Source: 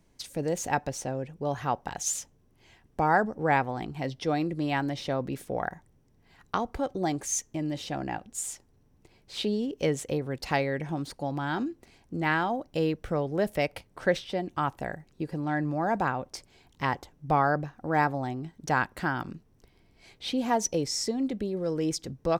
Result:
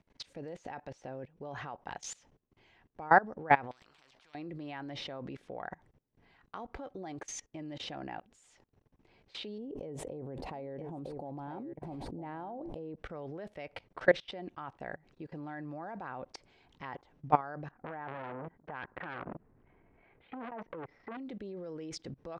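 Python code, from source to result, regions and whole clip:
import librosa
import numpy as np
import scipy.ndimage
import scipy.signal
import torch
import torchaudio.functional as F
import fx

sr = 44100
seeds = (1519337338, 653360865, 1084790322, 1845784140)

y = fx.chain(x, sr, fx.level_steps(step_db=12),
    fx.spectral_comp(ratio=10.0), at=(3.71, 4.35))
y = fx.chain(y, sr, fx.band_shelf(hz=3000.0, db=-15.5, octaves=2.9),
    fx.echo_single(ms=958, db=-13.5),
    fx.pre_swell(db_per_s=32.0), at=(9.58, 12.98))
y = fx.chain(y, sr, fx.lowpass(hz=2000.0, slope=24),
    fx.over_compress(threshold_db=-30.0, ratio=-0.5),
    fx.transformer_sat(knee_hz=2100.0), at=(17.71, 21.17))
y = scipy.signal.sosfilt(scipy.signal.butter(2, 3300.0, 'lowpass', fs=sr, output='sos'), y)
y = fx.low_shelf(y, sr, hz=230.0, db=-7.5)
y = fx.level_steps(y, sr, step_db=23)
y = y * librosa.db_to_amplitude(4.0)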